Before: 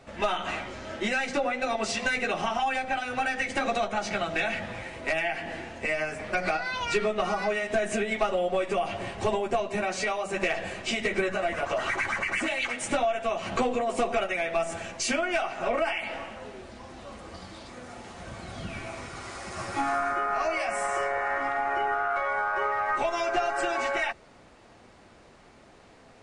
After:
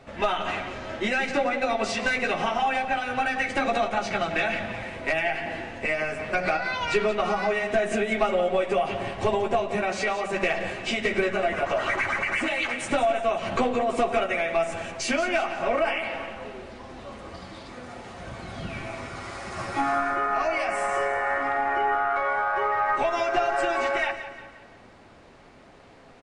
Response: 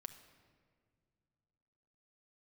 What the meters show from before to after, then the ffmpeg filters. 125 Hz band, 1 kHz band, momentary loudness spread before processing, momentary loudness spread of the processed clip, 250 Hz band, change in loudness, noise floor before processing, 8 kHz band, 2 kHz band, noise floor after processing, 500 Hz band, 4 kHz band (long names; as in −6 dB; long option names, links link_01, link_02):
+3.0 dB, +3.0 dB, 12 LU, 12 LU, +3.0 dB, +2.5 dB, −54 dBFS, −2.0 dB, +2.5 dB, −50 dBFS, +3.0 dB, +1.5 dB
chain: -filter_complex "[0:a]acontrast=56,aecho=1:1:177|354|531|708:0.251|0.111|0.0486|0.0214,asplit=2[link_01][link_02];[1:a]atrim=start_sample=2205,asetrate=34839,aresample=44100,lowpass=5300[link_03];[link_02][link_03]afir=irnorm=-1:irlink=0,volume=0.5dB[link_04];[link_01][link_04]amix=inputs=2:normalize=0,volume=-8dB"